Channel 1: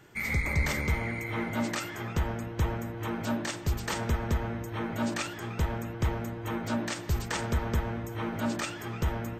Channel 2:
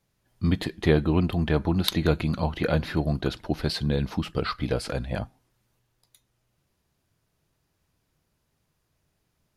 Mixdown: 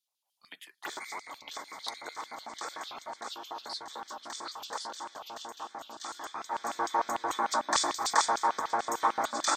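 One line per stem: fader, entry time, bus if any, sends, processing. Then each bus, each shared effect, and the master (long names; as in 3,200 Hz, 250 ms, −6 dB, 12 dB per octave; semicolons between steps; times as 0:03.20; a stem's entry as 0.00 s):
−0.5 dB, 0.85 s, no send, echo send −18.5 dB, hollow resonant body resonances 280/1,100/3,500 Hz, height 13 dB, ringing for 95 ms; envelope flattener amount 100%; automatic ducking −14 dB, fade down 1.40 s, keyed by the second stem
−11.5 dB, 0.00 s, no send, no echo send, high-pass filter 160 Hz; spectral tilt +1.5 dB per octave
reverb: not used
echo: repeating echo 636 ms, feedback 52%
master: phaser swept by the level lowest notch 280 Hz, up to 2,800 Hz, full sweep at −30 dBFS; auto-filter high-pass square 6.7 Hz 860–3,300 Hz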